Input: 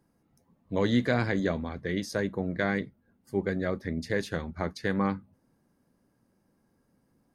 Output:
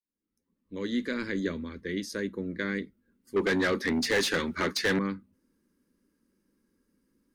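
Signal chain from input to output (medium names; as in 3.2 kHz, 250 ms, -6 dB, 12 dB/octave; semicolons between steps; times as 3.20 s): fade-in on the opening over 1.43 s; static phaser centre 300 Hz, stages 4; 3.36–4.99 s: overdrive pedal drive 25 dB, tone 6.8 kHz, clips at -17 dBFS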